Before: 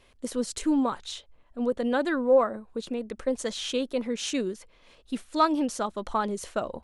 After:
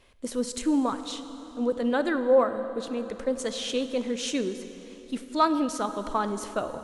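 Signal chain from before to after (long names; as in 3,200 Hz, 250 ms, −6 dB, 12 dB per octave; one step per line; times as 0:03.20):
dense smooth reverb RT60 3.9 s, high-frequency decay 0.7×, DRR 9.5 dB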